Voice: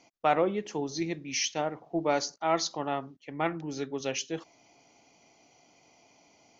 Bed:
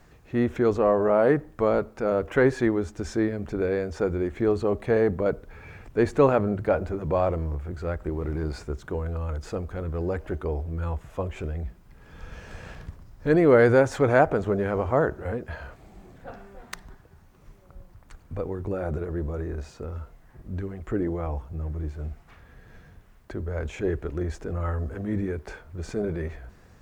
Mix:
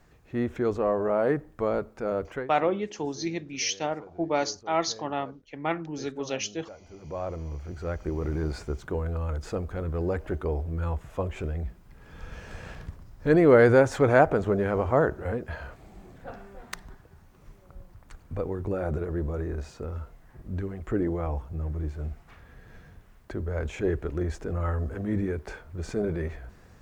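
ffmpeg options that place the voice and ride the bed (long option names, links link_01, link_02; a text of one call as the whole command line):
ffmpeg -i stem1.wav -i stem2.wav -filter_complex "[0:a]adelay=2250,volume=1dB[link_01];[1:a]volume=19dB,afade=type=out:start_time=2.24:duration=0.23:silence=0.112202,afade=type=in:start_time=6.82:duration=1.43:silence=0.0668344[link_02];[link_01][link_02]amix=inputs=2:normalize=0" out.wav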